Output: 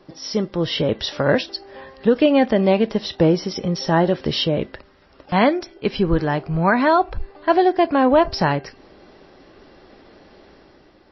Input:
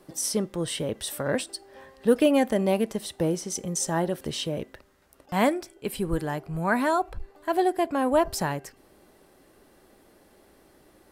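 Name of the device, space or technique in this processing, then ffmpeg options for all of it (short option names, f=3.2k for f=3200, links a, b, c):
low-bitrate web radio: -af "dynaudnorm=f=130:g=9:m=6dB,alimiter=limit=-9.5dB:level=0:latency=1:release=331,volume=4.5dB" -ar 16000 -c:a libmp3lame -b:a 24k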